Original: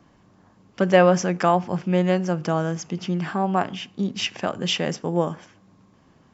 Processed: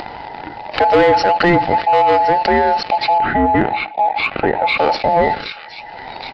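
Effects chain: band inversion scrambler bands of 1000 Hz; spectral noise reduction 18 dB; upward compressor, threshold -28 dBFS; on a send: thin delay 0.769 s, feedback 61%, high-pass 1800 Hz, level -22 dB; on the sum: sample leveller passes 2; downsampling 11025 Hz; 3.18–4.78 air absorption 470 m; in parallel at -8 dB: soft clip -13.5 dBFS, distortion -11 dB; on the sum: fast leveller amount 50%; gain -3 dB

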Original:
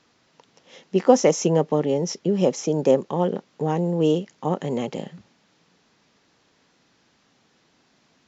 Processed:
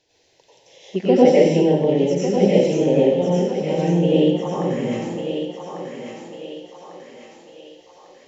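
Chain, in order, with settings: envelope phaser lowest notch 210 Hz, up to 1200 Hz, full sweep at -19 dBFS; on a send: thinning echo 1.147 s, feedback 52%, high-pass 430 Hz, level -5.5 dB; on the sum: plate-style reverb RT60 0.76 s, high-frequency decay 1×, pre-delay 80 ms, DRR -7.5 dB; gain -2 dB

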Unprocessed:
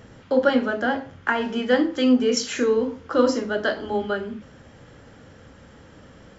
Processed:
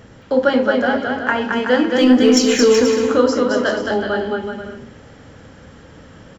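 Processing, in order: 1.96–3.07 sample leveller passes 1; bouncing-ball echo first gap 0.22 s, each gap 0.7×, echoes 5; gain +3.5 dB

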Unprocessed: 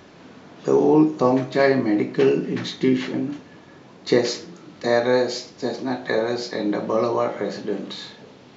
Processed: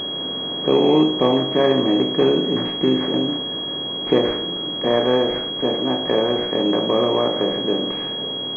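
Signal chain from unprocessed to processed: per-bin compression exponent 0.6; pulse-width modulation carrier 3300 Hz; gain -1.5 dB

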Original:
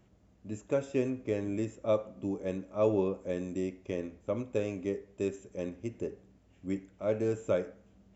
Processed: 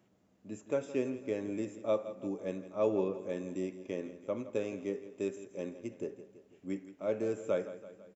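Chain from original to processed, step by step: HPF 170 Hz 12 dB/oct; on a send: feedback echo 0.166 s, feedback 54%, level -14 dB; on the sum: gain -2.5 dB

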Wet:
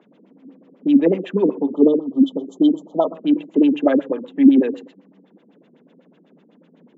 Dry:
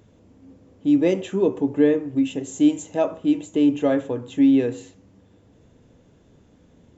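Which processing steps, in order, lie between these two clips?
spectral delete 1.63–3.15, 1300–3000 Hz; LFO low-pass sine 8 Hz 230–3400 Hz; steep high-pass 160 Hz 72 dB/oct; gain +1 dB

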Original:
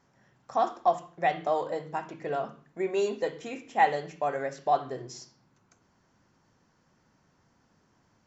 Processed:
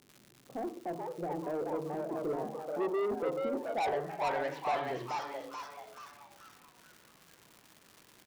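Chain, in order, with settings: HPF 90 Hz; in parallel at +3 dB: limiter -21 dBFS, peak gain reduction 10 dB; on the sum: low-pass sweep 360 Hz -> 3100 Hz, 3.58–4.39; crackle 180/s -34 dBFS; soft clip -21 dBFS, distortion -6 dB; on a send: frequency-shifting echo 0.433 s, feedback 44%, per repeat +150 Hz, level -3.5 dB; on the sum: gain -8.5 dB

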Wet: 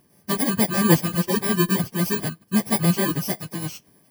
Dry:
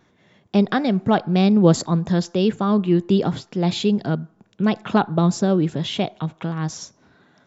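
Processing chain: FFT order left unsorted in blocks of 32 samples; plain phase-vocoder stretch 0.55×; gain +1.5 dB

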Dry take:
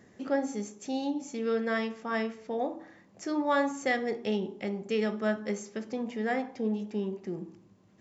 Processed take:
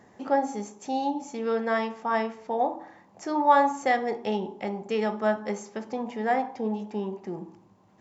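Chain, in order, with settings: bell 870 Hz +13 dB 0.79 oct

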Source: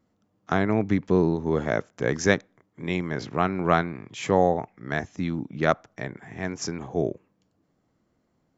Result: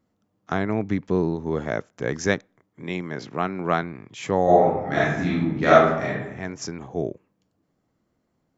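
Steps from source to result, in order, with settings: 2.83–3.83 HPF 130 Hz 12 dB/oct; 4.44–6.09 reverb throw, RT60 0.92 s, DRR -9 dB; gain -1.5 dB

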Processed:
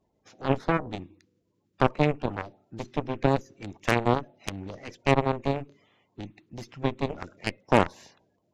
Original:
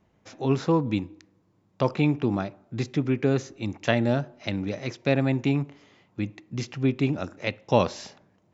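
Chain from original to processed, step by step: bin magnitudes rounded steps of 30 dB; added harmonics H 6 -16 dB, 7 -14 dB, 8 -30 dB, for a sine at -6 dBFS; dynamic EQ 4800 Hz, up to -8 dB, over -48 dBFS, Q 0.99; gain +1 dB

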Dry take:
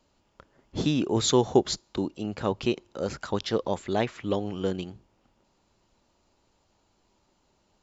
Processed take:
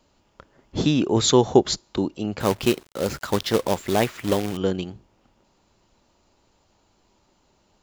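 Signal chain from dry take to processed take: 2.4–4.57 companded quantiser 4-bit; gain +5 dB

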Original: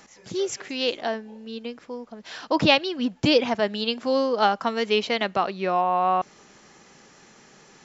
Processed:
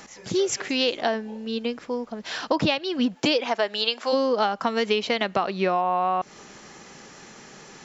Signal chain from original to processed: 3.14–4.12 HPF 300 Hz -> 680 Hz 12 dB/oct; compressor 16:1, threshold -25 dBFS, peak gain reduction 14 dB; gain +6.5 dB

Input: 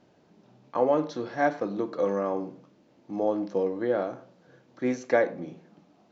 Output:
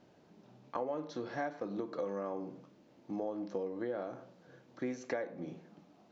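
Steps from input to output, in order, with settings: compressor 5:1, threshold -33 dBFS, peak gain reduction 14 dB; gain -2 dB

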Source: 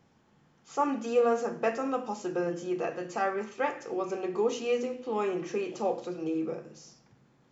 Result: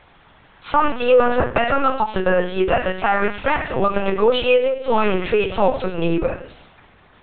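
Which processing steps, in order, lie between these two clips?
HPF 1000 Hz 6 dB/oct; varispeed +4%; LPC vocoder at 8 kHz pitch kept; maximiser +26.5 dB; ending taper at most 280 dB/s; gain -4.5 dB

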